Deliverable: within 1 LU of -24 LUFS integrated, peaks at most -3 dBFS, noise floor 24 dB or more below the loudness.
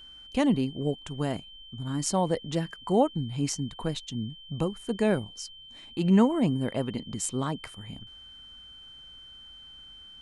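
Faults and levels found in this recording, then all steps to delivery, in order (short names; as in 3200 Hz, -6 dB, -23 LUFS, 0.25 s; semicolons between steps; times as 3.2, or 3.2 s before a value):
steady tone 3100 Hz; tone level -46 dBFS; loudness -28.5 LUFS; peak -9.5 dBFS; loudness target -24.0 LUFS
-> notch 3100 Hz, Q 30; gain +4.5 dB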